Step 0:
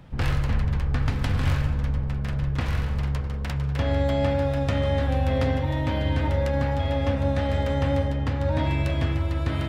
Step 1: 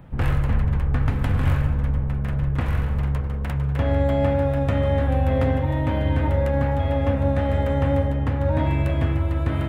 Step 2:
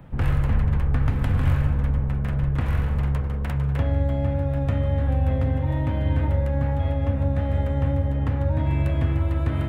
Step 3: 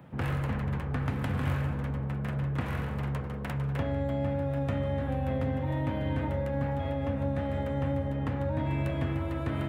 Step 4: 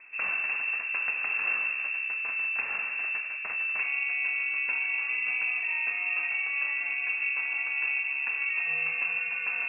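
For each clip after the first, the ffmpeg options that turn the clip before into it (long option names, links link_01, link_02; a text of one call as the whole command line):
ffmpeg -i in.wav -af "equalizer=frequency=5000:width_type=o:width=1.4:gain=-13.5,volume=3dB" out.wav
ffmpeg -i in.wav -filter_complex "[0:a]acrossover=split=210[link_01][link_02];[link_02]acompressor=threshold=-30dB:ratio=6[link_03];[link_01][link_03]amix=inputs=2:normalize=0" out.wav
ffmpeg -i in.wav -af "highpass=140,volume=-2.5dB" out.wav
ffmpeg -i in.wav -af "lowpass=frequency=2400:width_type=q:width=0.5098,lowpass=frequency=2400:width_type=q:width=0.6013,lowpass=frequency=2400:width_type=q:width=0.9,lowpass=frequency=2400:width_type=q:width=2.563,afreqshift=-2800" out.wav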